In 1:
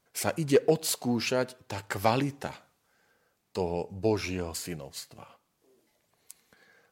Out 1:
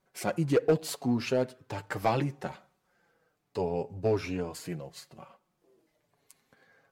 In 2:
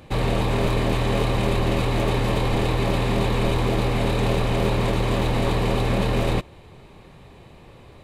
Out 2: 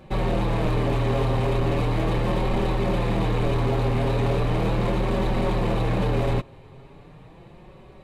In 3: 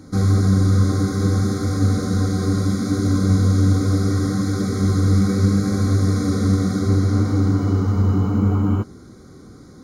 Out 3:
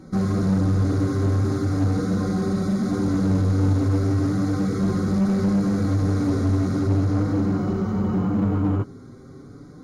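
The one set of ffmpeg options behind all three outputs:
ffmpeg -i in.wav -filter_complex "[0:a]flanger=delay=5.3:depth=2.2:regen=-14:speed=0.38:shape=sinusoidal,highshelf=frequency=2500:gain=-9,asplit=2[link_01][link_02];[link_02]aeval=exprs='0.075*(abs(mod(val(0)/0.075+3,4)-2)-1)':channel_layout=same,volume=-6dB[link_03];[link_01][link_03]amix=inputs=2:normalize=0" out.wav

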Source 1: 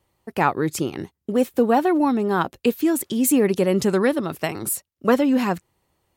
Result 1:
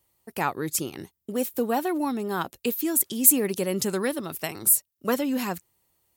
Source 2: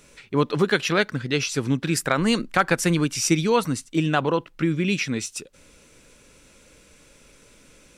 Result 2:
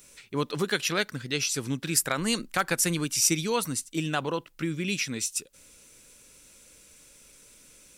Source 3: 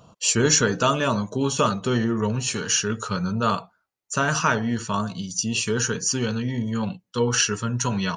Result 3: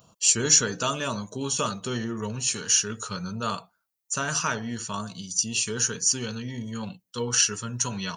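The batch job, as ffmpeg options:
ffmpeg -i in.wav -af "aemphasis=mode=production:type=75kf,volume=-8dB" out.wav

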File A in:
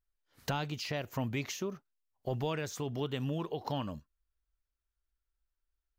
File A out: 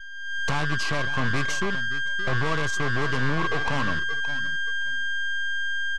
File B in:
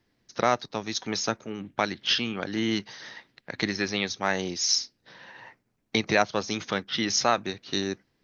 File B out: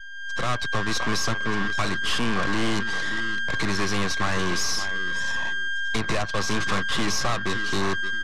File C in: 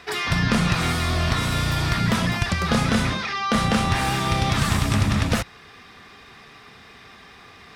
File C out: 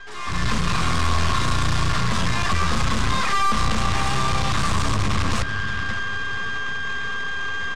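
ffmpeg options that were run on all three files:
ffmpeg -i in.wav -filter_complex "[0:a]aeval=exprs='val(0)+0.0178*sin(2*PI*1600*n/s)':channel_layout=same,acrossover=split=100|1800[link_01][link_02][link_03];[link_01]acompressor=threshold=-30dB:ratio=4[link_04];[link_02]acompressor=threshold=-28dB:ratio=4[link_05];[link_03]acompressor=threshold=-31dB:ratio=4[link_06];[link_04][link_05][link_06]amix=inputs=3:normalize=0,aecho=1:1:571|1142|1713:0.158|0.0539|0.0183,afftdn=noise_reduction=23:noise_floor=-47,aeval=exprs='(tanh(100*val(0)+0.75)-tanh(0.75))/100':channel_layout=same,lowpass=frequency=8700:width=0.5412,lowpass=frequency=8700:width=1.3066,equalizer=frequency=1100:width_type=o:width=0.21:gain=13.5,dynaudnorm=framelen=130:gausssize=5:maxgain=12dB,lowshelf=frequency=84:gain=9,aeval=exprs='0.211*(cos(1*acos(clip(val(0)/0.211,-1,1)))-cos(1*PI/2))+0.0531*(cos(4*acos(clip(val(0)/0.211,-1,1)))-cos(4*PI/2))+0.015*(cos(6*acos(clip(val(0)/0.211,-1,1)))-cos(6*PI/2))':channel_layout=same" out.wav

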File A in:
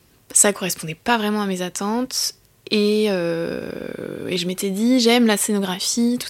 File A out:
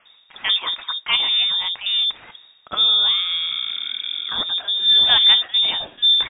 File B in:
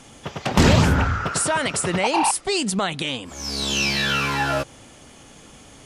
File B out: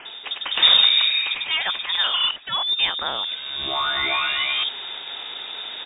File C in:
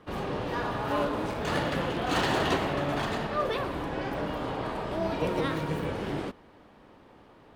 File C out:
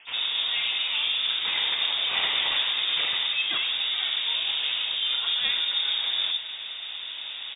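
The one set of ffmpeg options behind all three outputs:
ffmpeg -i in.wav -filter_complex "[0:a]equalizer=frequency=220:width=3.3:gain=5.5,areverse,acompressor=mode=upward:threshold=-17dB:ratio=2.5,areverse,acrossover=split=650[link_01][link_02];[link_01]adelay=50[link_03];[link_03][link_02]amix=inputs=2:normalize=0,lowpass=frequency=3200:width_type=q:width=0.5098,lowpass=frequency=3200:width_type=q:width=0.6013,lowpass=frequency=3200:width_type=q:width=0.9,lowpass=frequency=3200:width_type=q:width=2.563,afreqshift=-3800,volume=-1dB" out.wav

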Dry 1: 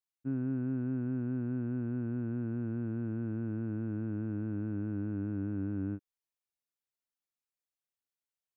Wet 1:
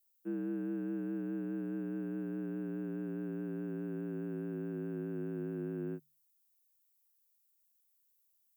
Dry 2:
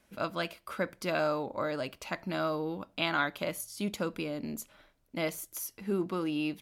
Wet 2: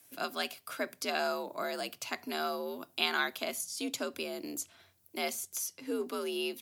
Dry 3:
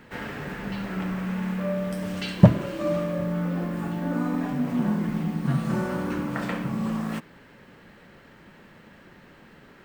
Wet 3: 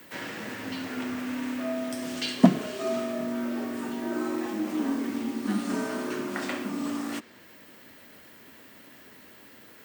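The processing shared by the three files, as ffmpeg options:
ffmpeg -i in.wav -filter_complex "[0:a]aemphasis=mode=production:type=75fm,afreqshift=66,highshelf=frequency=5300:gain=5,acrossover=split=200|7600[link_01][link_02][link_03];[link_03]acompressor=threshold=-48dB:ratio=6[link_04];[link_01][link_02][link_04]amix=inputs=3:normalize=0,bandreject=frequency=50:width_type=h:width=6,bandreject=frequency=100:width_type=h:width=6,bandreject=frequency=150:width_type=h:width=6,volume=-3dB" out.wav

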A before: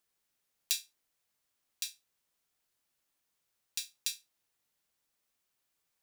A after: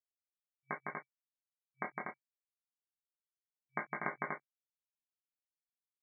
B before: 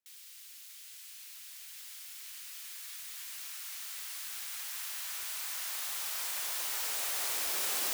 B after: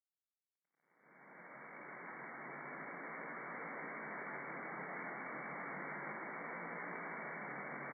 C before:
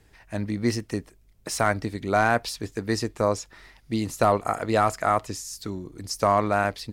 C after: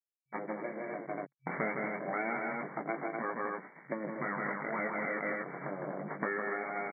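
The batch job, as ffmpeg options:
ffmpeg -i in.wav -af "aeval=exprs='abs(val(0))':channel_layout=same,flanger=delay=17:depth=5.9:speed=0.3,aecho=1:1:157.4|242:0.708|0.562,dynaudnorm=framelen=300:gausssize=9:maxgain=10.5dB,aeval=exprs='sgn(val(0))*max(abs(val(0))-0.0119,0)':channel_layout=same,acompressor=threshold=-27dB:ratio=6,afftfilt=real='re*between(b*sr/4096,130,2300)':imag='im*between(b*sr/4096,130,2300)':win_size=4096:overlap=0.75,volume=1.5dB" out.wav

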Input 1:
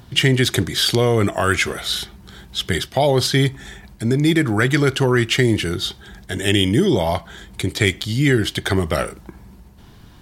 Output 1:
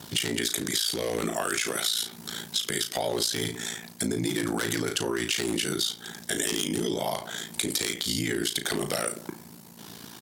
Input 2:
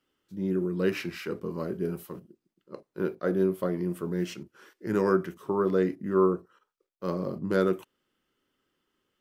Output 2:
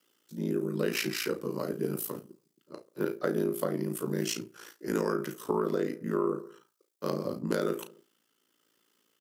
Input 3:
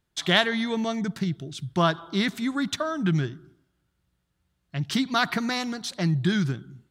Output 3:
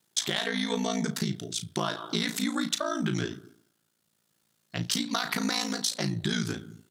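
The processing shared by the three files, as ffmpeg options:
ffmpeg -i in.wav -filter_complex "[0:a]tremolo=f=0.9:d=0.31,asplit=2[link_01][link_02];[link_02]adelay=69,lowpass=frequency=1600:poles=1,volume=-21.5dB,asplit=2[link_03][link_04];[link_04]adelay=69,lowpass=frequency=1600:poles=1,volume=0.55,asplit=2[link_05][link_06];[link_06]adelay=69,lowpass=frequency=1600:poles=1,volume=0.55,asplit=2[link_07][link_08];[link_08]adelay=69,lowpass=frequency=1600:poles=1,volume=0.55[link_09];[link_03][link_05][link_07][link_09]amix=inputs=4:normalize=0[link_10];[link_01][link_10]amix=inputs=2:normalize=0,aeval=exprs='0.376*(abs(mod(val(0)/0.376+3,4)-2)-1)':channel_layout=same,highpass=frequency=150:width=0.5412,highpass=frequency=150:width=1.3066,asplit=2[link_11][link_12];[link_12]adelay=35,volume=-10dB[link_13];[link_11][link_13]amix=inputs=2:normalize=0,asplit=2[link_14][link_15];[link_15]acontrast=76,volume=2dB[link_16];[link_14][link_16]amix=inputs=2:normalize=0,alimiter=limit=-7dB:level=0:latency=1:release=73,aeval=exprs='val(0)*sin(2*PI*28*n/s)':channel_layout=same,bass=frequency=250:gain=-3,treble=frequency=4000:gain=11,acompressor=threshold=-19dB:ratio=6,volume=-5.5dB" out.wav

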